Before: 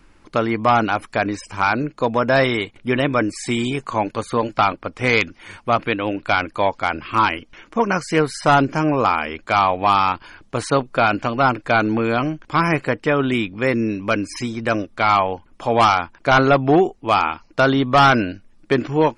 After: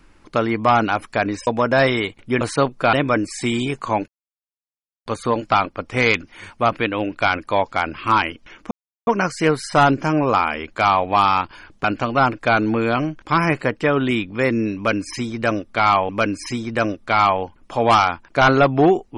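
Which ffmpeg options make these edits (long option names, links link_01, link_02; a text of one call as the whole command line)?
ffmpeg -i in.wav -filter_complex "[0:a]asplit=8[link_01][link_02][link_03][link_04][link_05][link_06][link_07][link_08];[link_01]atrim=end=1.472[link_09];[link_02]atrim=start=2.038:end=2.982[link_10];[link_03]atrim=start=10.548:end=11.072[link_11];[link_04]atrim=start=2.978:end=4.13,asetpts=PTS-STARTPTS,afade=type=out:start_time=1.148:duration=0.004:curve=hsin,apad=pad_dur=0.98[link_12];[link_05]atrim=start=4.13:end=7.78,asetpts=PTS-STARTPTS,afade=type=in:duration=0.004:curve=hsin,afade=type=out:start_time=3.646:duration=0.004:curve=hsin,apad=pad_dur=0.36[link_13];[link_06]atrim=start=7.78:end=10.552,asetpts=PTS-STARTPTS,afade=type=in:duration=0.004:curve=hsin[link_14];[link_07]atrim=start=11.068:end=15.322[link_15];[link_08]atrim=start=13.988[link_16];[link_09][link_10]acrossfade=duration=0.004:curve1=hsin:curve2=hsin[link_17];[link_17][link_11]acrossfade=duration=0.004:curve1=hsin:curve2=hsin[link_18];[link_12][link_13][link_14]concat=n=3:v=0:a=1[link_19];[link_18][link_19]acrossfade=duration=0.004:curve1=hsin:curve2=hsin[link_20];[link_20][link_15]acrossfade=duration=0.004:curve1=hsin:curve2=hsin[link_21];[link_21][link_16]acrossfade=duration=0.004:curve1=hsin:curve2=hsin" out.wav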